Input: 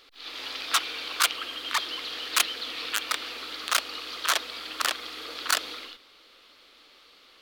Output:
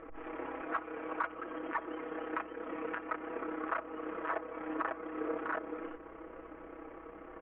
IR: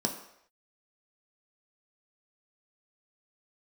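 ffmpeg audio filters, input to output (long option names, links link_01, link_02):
-filter_complex "[0:a]tremolo=f=33:d=0.571,aecho=1:1:6.2:0.81,acompressor=threshold=-47dB:ratio=2.5,aeval=exprs='val(0)+0.000112*(sin(2*PI*60*n/s)+sin(2*PI*2*60*n/s)/2+sin(2*PI*3*60*n/s)/3+sin(2*PI*4*60*n/s)/4+sin(2*PI*5*60*n/s)/5)':channel_layout=same,aresample=8000,adynamicsmooth=sensitivity=4:basefreq=1200,aresample=44100,lowpass=2300,asplit=2[link_01][link_02];[1:a]atrim=start_sample=2205,asetrate=48510,aresample=44100[link_03];[link_02][link_03]afir=irnorm=-1:irlink=0,volume=-17.5dB[link_04];[link_01][link_04]amix=inputs=2:normalize=0,volume=14.5dB"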